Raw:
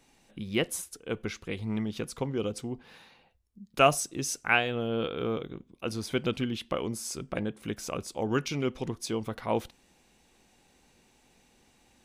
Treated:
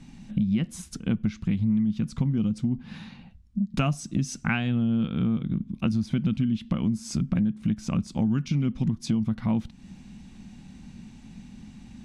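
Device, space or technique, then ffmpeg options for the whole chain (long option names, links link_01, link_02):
jukebox: -af "lowpass=7100,lowshelf=frequency=300:width_type=q:width=3:gain=13,acompressor=threshold=-30dB:ratio=6,volume=7dB"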